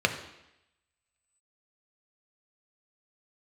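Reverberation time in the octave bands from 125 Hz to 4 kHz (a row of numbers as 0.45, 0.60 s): 0.75, 0.85, 0.85, 0.85, 0.95, 0.90 s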